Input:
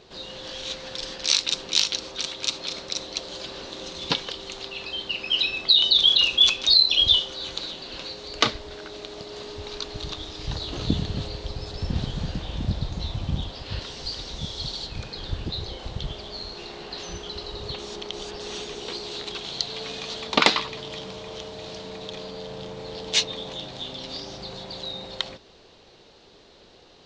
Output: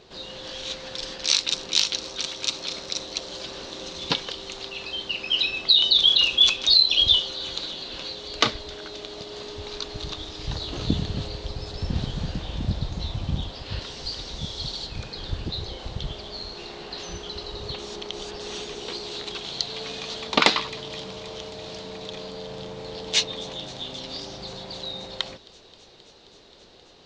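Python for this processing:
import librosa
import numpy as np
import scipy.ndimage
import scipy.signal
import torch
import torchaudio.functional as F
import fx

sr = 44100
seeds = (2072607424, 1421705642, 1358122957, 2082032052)

y = fx.echo_wet_highpass(x, sr, ms=265, feedback_pct=85, hz=4100.0, wet_db=-19.5)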